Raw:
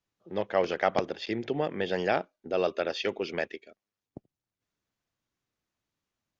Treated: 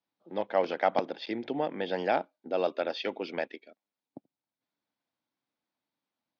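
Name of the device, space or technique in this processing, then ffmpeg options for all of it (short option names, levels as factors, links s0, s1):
kitchen radio: -af "highpass=230,equalizer=f=270:t=q:w=4:g=4,equalizer=f=400:t=q:w=4:g=-6,equalizer=f=870:t=q:w=4:g=4,equalizer=f=1200:t=q:w=4:g=-4,equalizer=f=1800:t=q:w=4:g=-4,equalizer=f=2800:t=q:w=4:g=-5,lowpass=f=4600:w=0.5412,lowpass=f=4600:w=1.3066"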